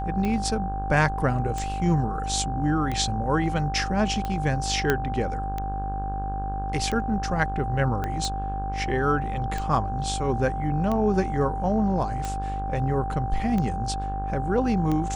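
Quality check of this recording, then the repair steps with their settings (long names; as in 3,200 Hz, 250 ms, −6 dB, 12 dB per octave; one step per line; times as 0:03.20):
mains buzz 50 Hz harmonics 33 −31 dBFS
scratch tick 45 rpm −16 dBFS
whistle 780 Hz −30 dBFS
0:04.90: click −8 dBFS
0:08.04: click −16 dBFS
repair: click removal
hum removal 50 Hz, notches 33
notch filter 780 Hz, Q 30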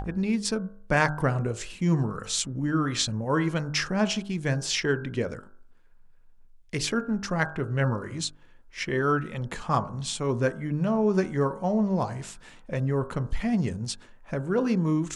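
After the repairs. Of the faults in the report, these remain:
0:08.04: click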